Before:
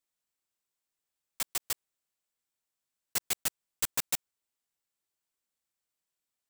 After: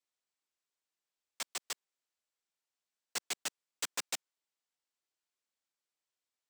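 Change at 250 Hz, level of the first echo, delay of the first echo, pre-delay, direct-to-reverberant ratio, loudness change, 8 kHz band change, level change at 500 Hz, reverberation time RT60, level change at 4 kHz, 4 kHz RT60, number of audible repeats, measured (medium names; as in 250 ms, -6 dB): -6.5 dB, no echo, no echo, no reverb, no reverb, -6.5 dB, -5.5 dB, -3.0 dB, no reverb, -2.0 dB, no reverb, no echo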